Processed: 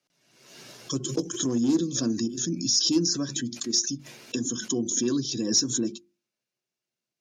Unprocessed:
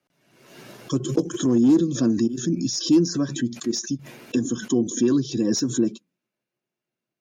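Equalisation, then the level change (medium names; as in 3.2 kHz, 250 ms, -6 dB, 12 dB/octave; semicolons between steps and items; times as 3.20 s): peaking EQ 5.5 kHz +11.5 dB 1.7 oct; hum notches 50/100/150/200/250/300/350 Hz; -6.0 dB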